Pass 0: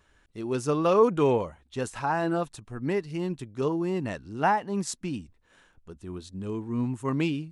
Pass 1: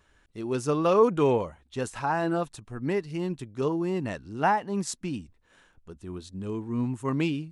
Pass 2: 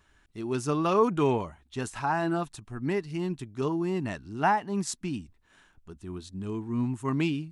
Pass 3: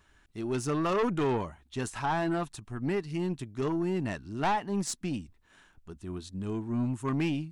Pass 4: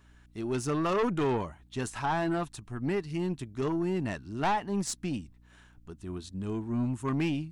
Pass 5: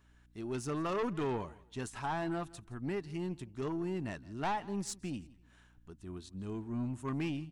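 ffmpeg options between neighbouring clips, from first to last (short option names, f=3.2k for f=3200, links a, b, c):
-af anull
-af "equalizer=f=510:t=o:w=0.27:g=-11.5"
-af "aeval=exprs='(tanh(15.8*val(0)+0.25)-tanh(0.25))/15.8':c=same,volume=1dB"
-af "aeval=exprs='val(0)+0.00126*(sin(2*PI*60*n/s)+sin(2*PI*2*60*n/s)/2+sin(2*PI*3*60*n/s)/3+sin(2*PI*4*60*n/s)/4+sin(2*PI*5*60*n/s)/5)':c=same"
-af "aecho=1:1:167|334:0.0841|0.0202,volume=-6.5dB"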